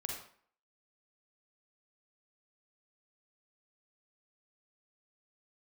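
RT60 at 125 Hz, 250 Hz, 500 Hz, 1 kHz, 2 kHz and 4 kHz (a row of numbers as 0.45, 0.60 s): 0.40, 0.50, 0.55, 0.55, 0.50, 0.40 s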